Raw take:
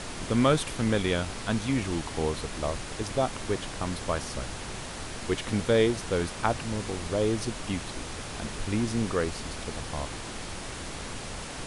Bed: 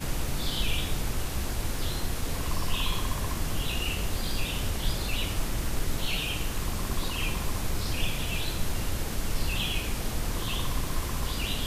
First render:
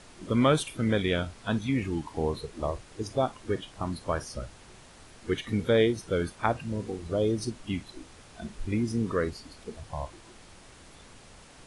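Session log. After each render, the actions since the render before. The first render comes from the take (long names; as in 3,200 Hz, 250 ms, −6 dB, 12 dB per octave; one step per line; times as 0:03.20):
noise reduction from a noise print 14 dB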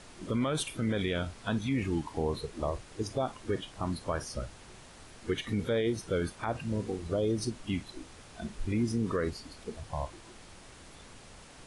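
brickwall limiter −21 dBFS, peak gain reduction 11.5 dB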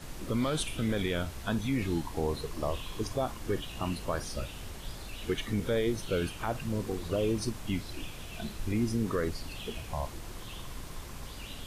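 mix in bed −13 dB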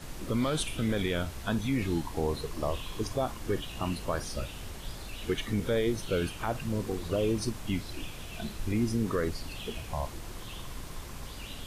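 level +1 dB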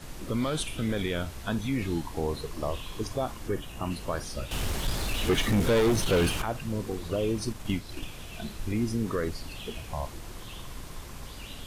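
0:03.48–0:03.91: parametric band 3,900 Hz −7 dB 1 octave
0:04.51–0:06.42: leveller curve on the samples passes 3
0:07.50–0:08.08: transient designer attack +4 dB, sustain −3 dB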